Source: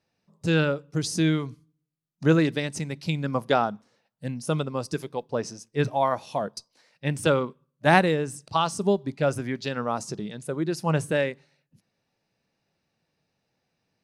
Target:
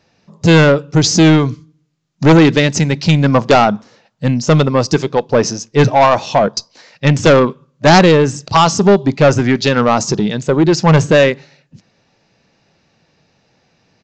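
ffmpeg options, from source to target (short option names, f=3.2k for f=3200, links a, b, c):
-af "aeval=exprs='0.631*sin(PI/2*3.16*val(0)/0.631)':c=same,acontrast=67,aresample=16000,aresample=44100,volume=-1.5dB"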